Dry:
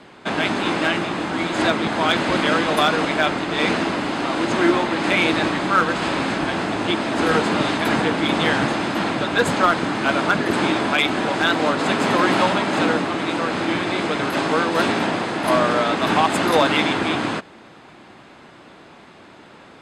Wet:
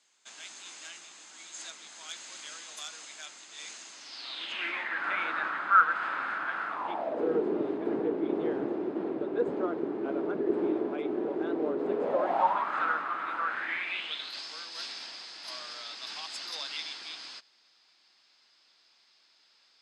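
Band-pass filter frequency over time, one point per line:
band-pass filter, Q 5.3
3.92 s 6.8 kHz
5.08 s 1.4 kHz
6.67 s 1.4 kHz
7.31 s 390 Hz
11.88 s 390 Hz
12.75 s 1.3 kHz
13.43 s 1.3 kHz
14.43 s 5 kHz

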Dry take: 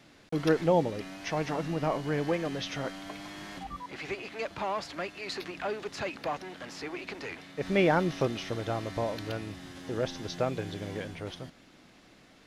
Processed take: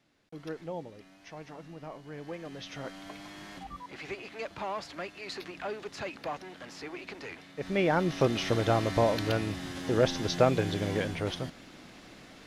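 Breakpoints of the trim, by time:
2.05 s -14 dB
3.03 s -3 dB
7.84 s -3 dB
8.47 s +6.5 dB

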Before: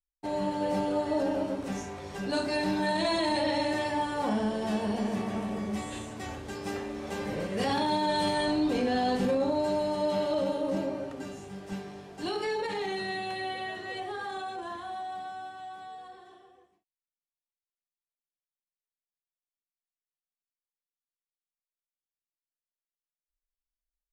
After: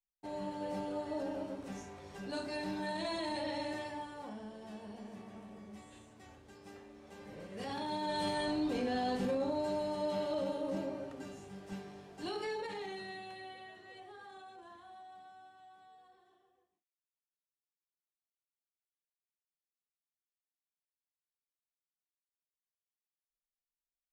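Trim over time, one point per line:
3.72 s -10 dB
4.36 s -18 dB
7.12 s -18 dB
8.26 s -7 dB
12.44 s -7 dB
13.73 s -16 dB

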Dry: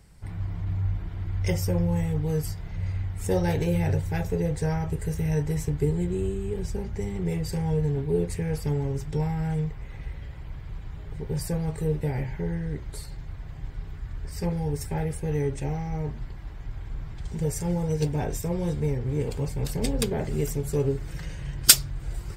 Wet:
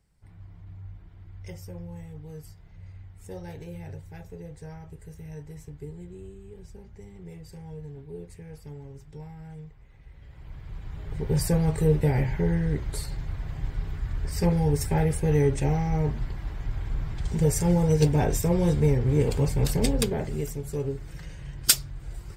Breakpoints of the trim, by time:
10.02 s -15 dB
10.48 s -4.5 dB
11.35 s +5 dB
19.69 s +5 dB
20.53 s -5 dB

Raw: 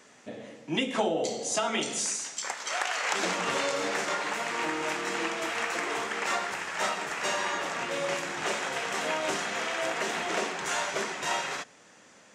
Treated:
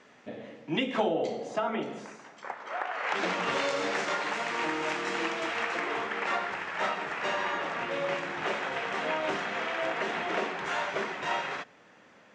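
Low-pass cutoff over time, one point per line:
0.99 s 3.5 kHz
1.77 s 1.4 kHz
2.92 s 1.4 kHz
3.17 s 3.1 kHz
3.70 s 5.1 kHz
5.28 s 5.1 kHz
6.02 s 3 kHz

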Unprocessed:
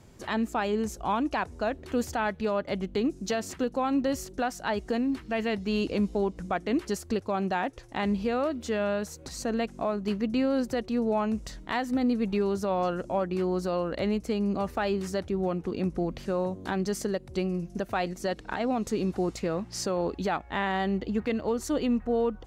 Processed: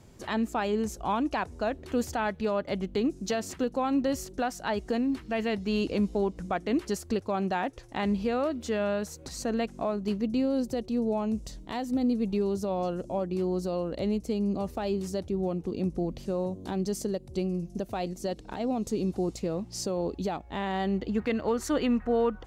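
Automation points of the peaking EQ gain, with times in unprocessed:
peaking EQ 1.6 kHz 1.5 oct
9.77 s -2 dB
10.42 s -12 dB
20.46 s -12 dB
20.83 s -4.5 dB
21.62 s +6.5 dB

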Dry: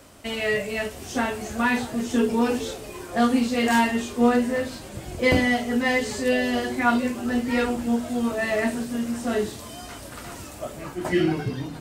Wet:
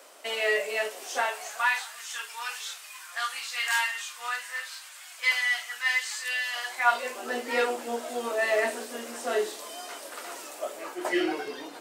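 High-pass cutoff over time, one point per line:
high-pass 24 dB/octave
0.97 s 430 Hz
1.98 s 1.2 kHz
6.43 s 1.2 kHz
7.32 s 390 Hz

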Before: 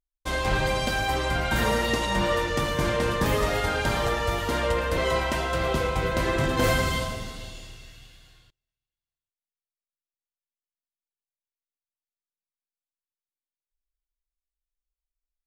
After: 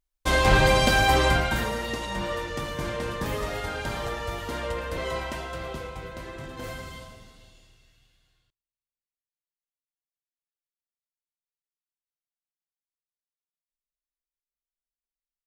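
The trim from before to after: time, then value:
1.28 s +6 dB
1.70 s -6 dB
5.23 s -6 dB
6.32 s -14.5 dB

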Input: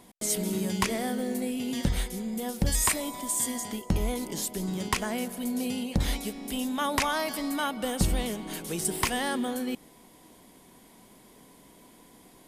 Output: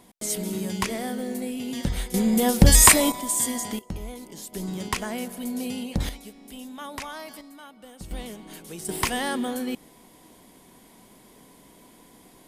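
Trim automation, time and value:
0 dB
from 2.14 s +12 dB
from 3.12 s +4 dB
from 3.79 s -7.5 dB
from 4.53 s 0 dB
from 6.09 s -9 dB
from 7.41 s -16 dB
from 8.11 s -6 dB
from 8.89 s +2 dB

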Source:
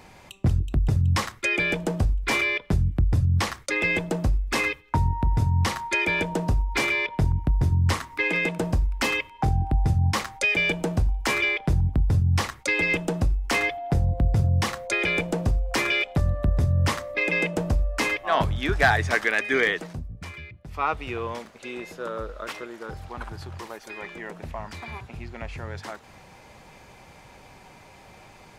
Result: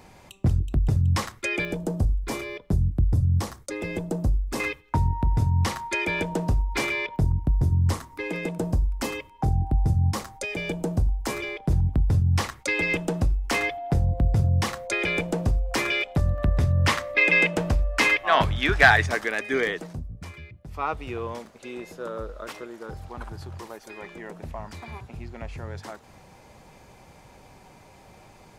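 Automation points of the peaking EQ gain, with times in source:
peaking EQ 2.3 kHz 2.3 oct
-4 dB
from 1.65 s -14.5 dB
from 4.60 s -3.5 dB
from 7.16 s -11 dB
from 11.71 s -2 dB
from 16.38 s +6 dB
from 19.06 s -5.5 dB

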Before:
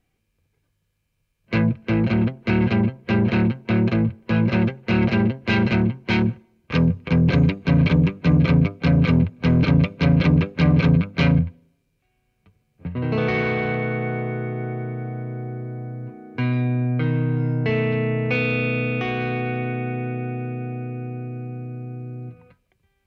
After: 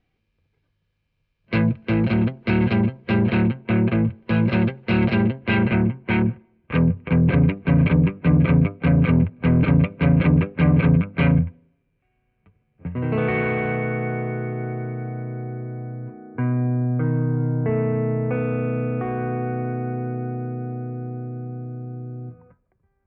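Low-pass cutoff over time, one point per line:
low-pass 24 dB/octave
3.02 s 4.6 kHz
3.86 s 2.9 kHz
4.34 s 4.3 kHz
5.12 s 4.3 kHz
5.76 s 2.6 kHz
15.80 s 2.6 kHz
16.52 s 1.5 kHz

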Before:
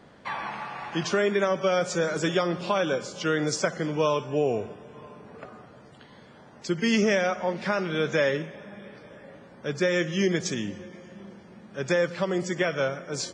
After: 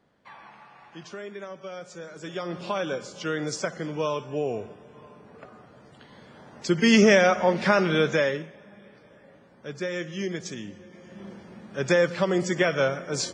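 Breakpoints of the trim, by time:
2.16 s -14.5 dB
2.57 s -3.5 dB
5.47 s -3.5 dB
7.03 s +6 dB
7.91 s +6 dB
8.56 s -6.5 dB
10.82 s -6.5 dB
11.27 s +3 dB

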